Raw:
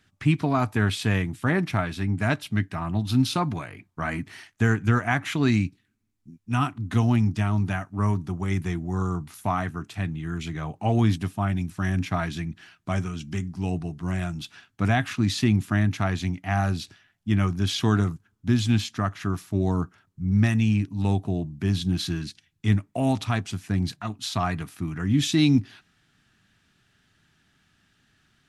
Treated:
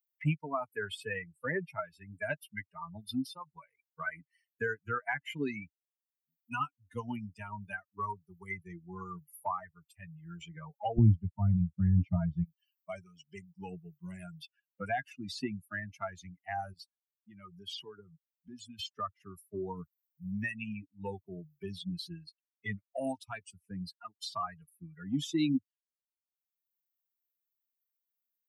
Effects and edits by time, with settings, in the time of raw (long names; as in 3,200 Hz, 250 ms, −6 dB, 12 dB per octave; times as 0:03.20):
0:03.10–0:03.55: fade out, to −12.5 dB
0:10.98–0:12.44: spectral tilt −4.5 dB per octave
0:16.73–0:18.79: downward compressor 2.5 to 1, threshold −30 dBFS
whole clip: spectral dynamics exaggerated over time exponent 3; multiband upward and downward compressor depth 70%